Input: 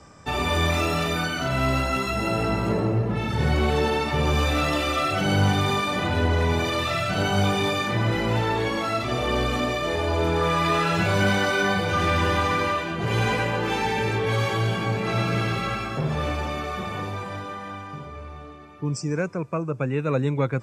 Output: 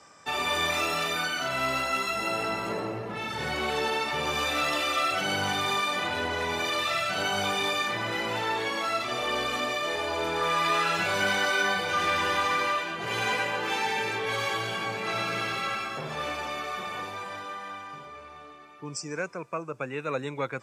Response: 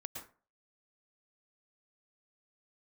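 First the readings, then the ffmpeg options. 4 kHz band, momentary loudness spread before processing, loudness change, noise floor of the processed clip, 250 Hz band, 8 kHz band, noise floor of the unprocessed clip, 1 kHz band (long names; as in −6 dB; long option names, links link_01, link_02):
−0.5 dB, 9 LU, −4.0 dB, −46 dBFS, −11.5 dB, 0.0 dB, −38 dBFS, −2.5 dB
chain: -af "highpass=frequency=890:poles=1"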